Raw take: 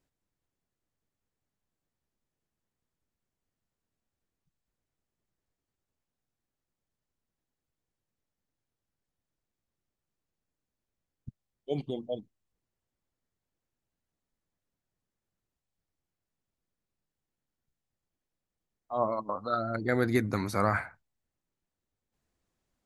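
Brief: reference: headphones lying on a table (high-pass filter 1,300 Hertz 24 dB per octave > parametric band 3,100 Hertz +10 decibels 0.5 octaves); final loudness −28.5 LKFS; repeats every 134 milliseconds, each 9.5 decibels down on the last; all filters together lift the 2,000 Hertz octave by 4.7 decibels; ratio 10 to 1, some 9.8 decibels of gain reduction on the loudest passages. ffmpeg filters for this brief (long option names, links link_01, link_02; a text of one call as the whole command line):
ffmpeg -i in.wav -af "equalizer=frequency=2000:width_type=o:gain=5.5,acompressor=threshold=-30dB:ratio=10,highpass=frequency=1300:width=0.5412,highpass=frequency=1300:width=1.3066,equalizer=frequency=3100:width_type=o:width=0.5:gain=10,aecho=1:1:134|268|402|536:0.335|0.111|0.0365|0.012,volume=13dB" out.wav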